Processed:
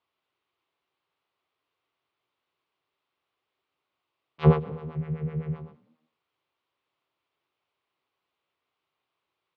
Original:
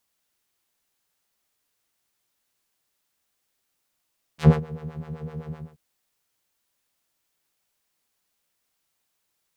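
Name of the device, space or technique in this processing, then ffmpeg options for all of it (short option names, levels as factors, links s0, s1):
frequency-shifting delay pedal into a guitar cabinet: -filter_complex "[0:a]asettb=1/sr,asplit=3[s0][s1][s2];[s0]atrim=end=4.954[s3];[s1]atrim=start=4.95:end=5.56,asetpts=PTS-STARTPTS,afade=t=in:d=0.004:c=qsin,afade=t=out:st=0.606:d=0.004:c=qsin,equalizer=f=125:t=o:w=1:g=10,equalizer=f=1000:t=o:w=1:g=-9,equalizer=f=2000:t=o:w=1:g=10,equalizer=f=4000:t=o:w=1:g=-7[s4];[s2]atrim=start=5.556[s5];[s3][s4]acrossfade=d=0.004:c1=hsin:c2=qsin[s6];[s6][s5]acrossfade=d=0.004:c1=qsin:c2=hsin,asplit=3[s7][s8][s9];[s8]adelay=200,afreqshift=40,volume=0.0631[s10];[s9]adelay=400,afreqshift=80,volume=0.0209[s11];[s7][s10][s11]amix=inputs=3:normalize=0,highpass=95,equalizer=f=210:t=q:w=4:g=-10,equalizer=f=380:t=q:w=4:g=5,equalizer=f=1100:t=q:w=4:g=6,equalizer=f=1700:t=q:w=4:g=-6,lowpass=f=3400:w=0.5412,lowpass=f=3400:w=1.3066"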